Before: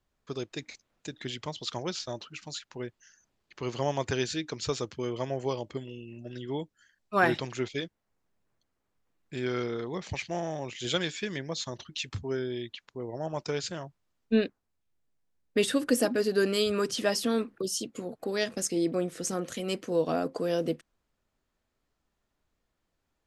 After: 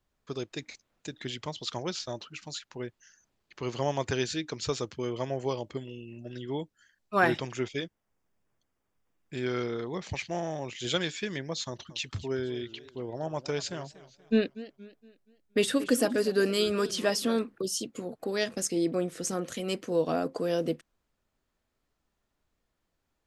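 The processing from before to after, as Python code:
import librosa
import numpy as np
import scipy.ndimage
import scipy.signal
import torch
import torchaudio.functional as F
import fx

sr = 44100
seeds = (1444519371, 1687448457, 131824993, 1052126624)

y = fx.notch(x, sr, hz=4100.0, q=7.6, at=(7.33, 9.34))
y = fx.echo_warbled(y, sr, ms=235, feedback_pct=41, rate_hz=2.8, cents=180, wet_db=-17.0, at=(11.64, 17.39))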